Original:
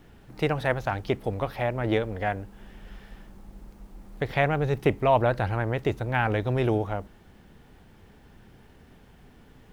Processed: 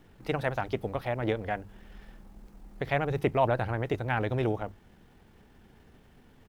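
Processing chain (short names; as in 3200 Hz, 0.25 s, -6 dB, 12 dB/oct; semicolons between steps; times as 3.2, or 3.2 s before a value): notches 50/100/150 Hz; tempo 1.5×; gain -3.5 dB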